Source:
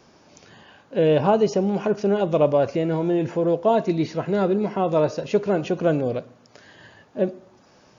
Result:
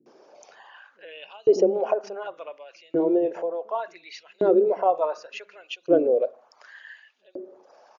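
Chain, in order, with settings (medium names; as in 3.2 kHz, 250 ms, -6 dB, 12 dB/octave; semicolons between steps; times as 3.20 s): resonances exaggerated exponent 1.5; bands offset in time lows, highs 60 ms, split 270 Hz; LFO high-pass saw up 0.68 Hz 290–4000 Hz; trim -1.5 dB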